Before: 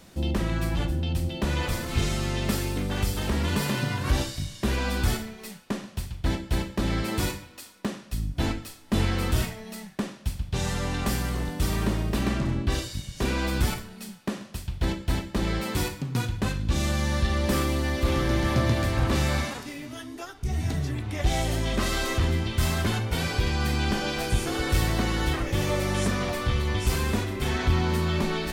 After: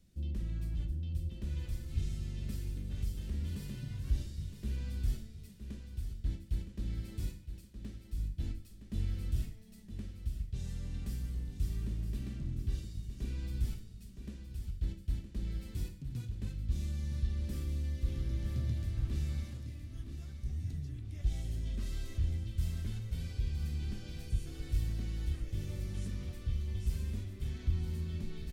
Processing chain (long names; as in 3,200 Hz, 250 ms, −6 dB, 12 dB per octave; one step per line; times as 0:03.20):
guitar amp tone stack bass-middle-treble 10-0-1
on a send: repeating echo 966 ms, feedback 38%, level −9.5 dB